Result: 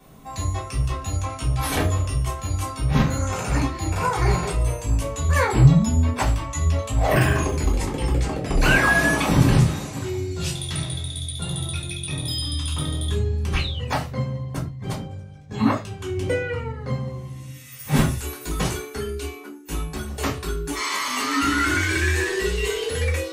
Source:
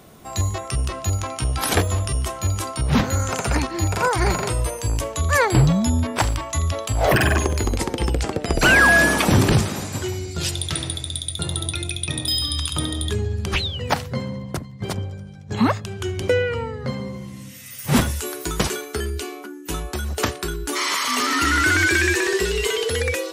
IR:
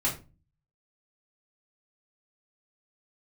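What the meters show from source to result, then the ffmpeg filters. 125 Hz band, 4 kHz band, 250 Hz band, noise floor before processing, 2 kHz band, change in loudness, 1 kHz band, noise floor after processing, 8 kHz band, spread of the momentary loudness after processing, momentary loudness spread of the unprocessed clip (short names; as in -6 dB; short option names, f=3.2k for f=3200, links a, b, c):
+1.0 dB, -4.5 dB, -1.0 dB, -38 dBFS, -4.5 dB, -2.0 dB, -2.5 dB, -38 dBFS, -4.5 dB, 12 LU, 12 LU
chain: -filter_complex "[1:a]atrim=start_sample=2205,afade=t=out:st=0.19:d=0.01,atrim=end_sample=8820[a];[0:a][a]afir=irnorm=-1:irlink=0,volume=-11dB"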